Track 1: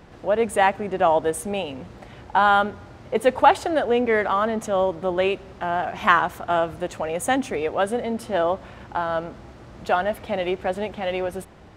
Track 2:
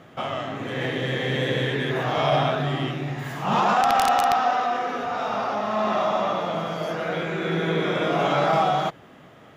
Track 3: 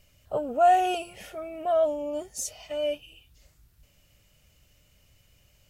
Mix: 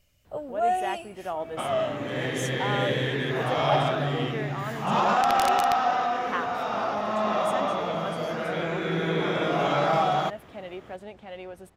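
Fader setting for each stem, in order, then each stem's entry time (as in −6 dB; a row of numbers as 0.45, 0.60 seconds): −14.0, −2.5, −5.5 decibels; 0.25, 1.40, 0.00 seconds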